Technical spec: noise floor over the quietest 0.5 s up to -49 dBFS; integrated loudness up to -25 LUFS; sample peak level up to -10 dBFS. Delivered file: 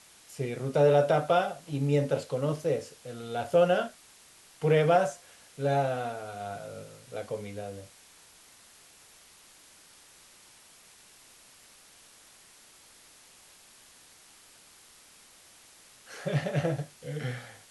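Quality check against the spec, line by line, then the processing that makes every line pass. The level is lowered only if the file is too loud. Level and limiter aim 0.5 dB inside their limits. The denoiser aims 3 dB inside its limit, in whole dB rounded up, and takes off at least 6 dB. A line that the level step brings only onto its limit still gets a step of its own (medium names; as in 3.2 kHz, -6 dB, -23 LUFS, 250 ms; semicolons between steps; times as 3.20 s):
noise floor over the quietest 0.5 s -56 dBFS: pass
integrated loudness -29.0 LUFS: pass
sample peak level -12.0 dBFS: pass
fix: none needed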